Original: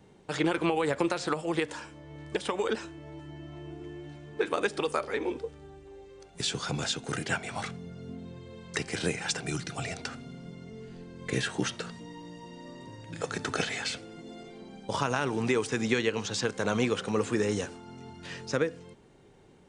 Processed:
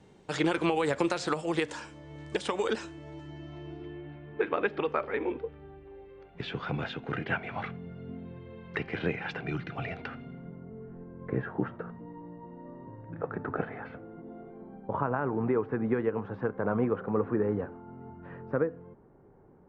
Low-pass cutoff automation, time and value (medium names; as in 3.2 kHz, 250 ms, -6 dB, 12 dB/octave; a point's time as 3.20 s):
low-pass 24 dB/octave
2.93 s 9.1 kHz
3.76 s 5 kHz
4.05 s 2.7 kHz
10.22 s 2.7 kHz
10.64 s 1.4 kHz